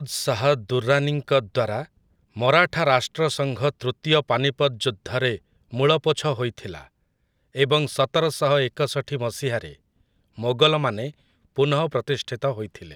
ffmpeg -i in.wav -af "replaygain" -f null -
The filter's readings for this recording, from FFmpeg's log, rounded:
track_gain = +1.3 dB
track_peak = 0.559